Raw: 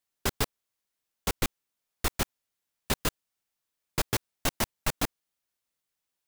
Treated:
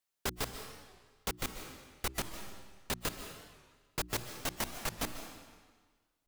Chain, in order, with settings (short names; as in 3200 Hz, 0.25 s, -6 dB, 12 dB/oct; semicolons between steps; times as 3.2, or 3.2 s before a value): low shelf 190 Hz -3 dB; notches 60/120/180/240/300/360 Hz; on a send at -12 dB: reverb RT60 1.5 s, pre-delay 0.1 s; on the sum: limiter -21 dBFS, peak gain reduction 8.5 dB; record warp 45 rpm, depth 160 cents; gain -1.5 dB